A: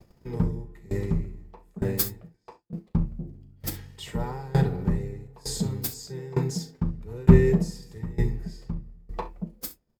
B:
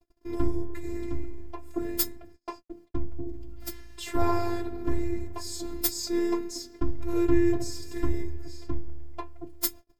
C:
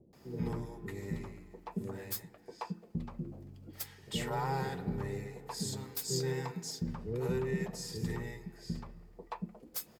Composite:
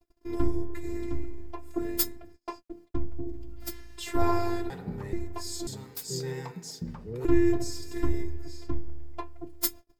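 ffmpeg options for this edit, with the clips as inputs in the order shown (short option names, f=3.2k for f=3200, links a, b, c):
-filter_complex "[2:a]asplit=2[a][b];[1:a]asplit=3[c][d][e];[c]atrim=end=4.702[f];[a]atrim=start=4.698:end=5.132[g];[d]atrim=start=5.128:end=5.672[h];[b]atrim=start=5.668:end=7.252[i];[e]atrim=start=7.248[j];[f][g]acrossfade=d=0.004:c1=hsin:c2=hsin[k];[k][h]acrossfade=d=0.004:c1=hsin:c2=hsin[l];[l][i]acrossfade=d=0.004:c1=hsin:c2=hsin[m];[m][j]acrossfade=d=0.004:c1=hsin:c2=hsin"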